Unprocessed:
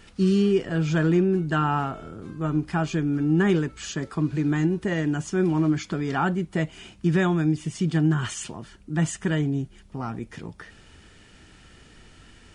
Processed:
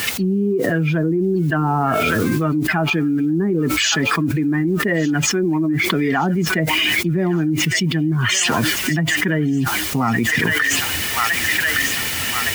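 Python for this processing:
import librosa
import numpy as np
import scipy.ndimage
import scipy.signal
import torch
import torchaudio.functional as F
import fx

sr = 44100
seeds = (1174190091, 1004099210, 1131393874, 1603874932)

p1 = fx.bin_expand(x, sr, power=1.5)
p2 = scipy.signal.sosfilt(scipy.signal.bessel(6, 160.0, 'highpass', norm='mag', fs=sr, output='sos'), p1)
p3 = fx.peak_eq(p2, sr, hz=2000.0, db=10.0, octaves=0.65)
p4 = fx.env_lowpass_down(p3, sr, base_hz=620.0, full_db=-20.5)
p5 = fx.dynamic_eq(p4, sr, hz=300.0, q=1.0, threshold_db=-36.0, ratio=4.0, max_db=4)
p6 = fx.rider(p5, sr, range_db=3, speed_s=0.5)
p7 = p5 + F.gain(torch.from_numpy(p6), -1.0).numpy()
p8 = fx.quant_dither(p7, sr, seeds[0], bits=10, dither='triangular')
p9 = p8 + fx.echo_wet_highpass(p8, sr, ms=1163, feedback_pct=40, hz=2000.0, wet_db=-9, dry=0)
p10 = fx.env_flatten(p9, sr, amount_pct=100)
y = F.gain(torch.from_numpy(p10), -6.0).numpy()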